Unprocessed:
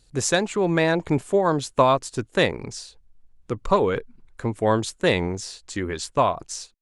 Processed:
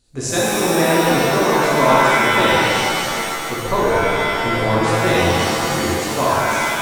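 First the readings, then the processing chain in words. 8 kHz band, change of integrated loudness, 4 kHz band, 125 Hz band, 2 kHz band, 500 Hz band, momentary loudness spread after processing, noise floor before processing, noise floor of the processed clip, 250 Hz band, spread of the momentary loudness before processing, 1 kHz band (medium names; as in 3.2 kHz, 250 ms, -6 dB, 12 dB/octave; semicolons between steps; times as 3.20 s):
+8.0 dB, +7.0 dB, +10.0 dB, +5.0 dB, +11.5 dB, +5.0 dB, 6 LU, -59 dBFS, -25 dBFS, +6.0 dB, 13 LU, +8.5 dB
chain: de-hum 100.5 Hz, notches 4; pitch-shifted reverb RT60 2.7 s, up +7 st, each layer -2 dB, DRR -7 dB; trim -4 dB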